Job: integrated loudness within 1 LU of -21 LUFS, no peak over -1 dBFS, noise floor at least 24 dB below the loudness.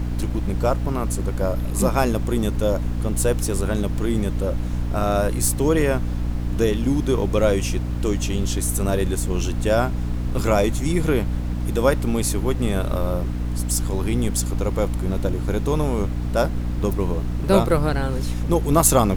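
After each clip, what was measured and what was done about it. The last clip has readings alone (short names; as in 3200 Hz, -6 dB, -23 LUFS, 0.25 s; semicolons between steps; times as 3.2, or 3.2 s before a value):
hum 60 Hz; harmonics up to 300 Hz; hum level -22 dBFS; noise floor -25 dBFS; noise floor target -47 dBFS; loudness -22.5 LUFS; peak -2.5 dBFS; loudness target -21.0 LUFS
-> notches 60/120/180/240/300 Hz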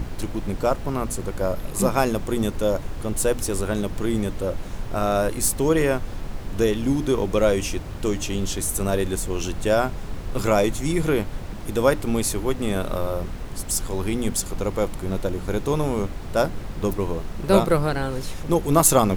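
hum none; noise floor -33 dBFS; noise floor target -48 dBFS
-> noise print and reduce 15 dB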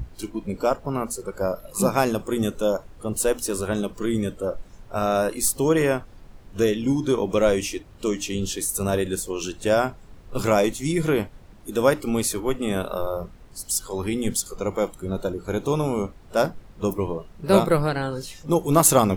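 noise floor -47 dBFS; noise floor target -48 dBFS
-> noise print and reduce 6 dB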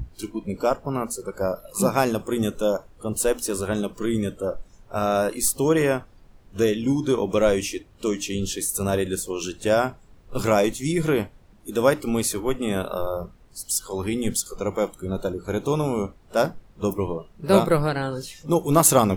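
noise floor -52 dBFS; loudness -24.0 LUFS; peak -2.5 dBFS; loudness target -21.0 LUFS
-> gain +3 dB; limiter -1 dBFS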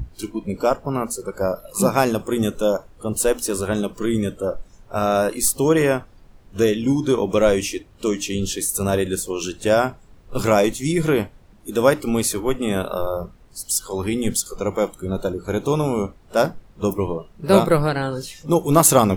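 loudness -21.5 LUFS; peak -1.0 dBFS; noise floor -49 dBFS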